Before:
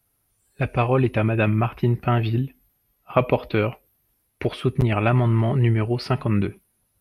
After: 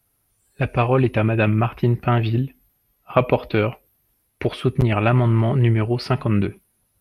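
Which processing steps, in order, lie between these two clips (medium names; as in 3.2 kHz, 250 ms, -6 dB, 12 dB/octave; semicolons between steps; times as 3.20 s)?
loudspeaker Doppler distortion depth 0.11 ms; trim +2 dB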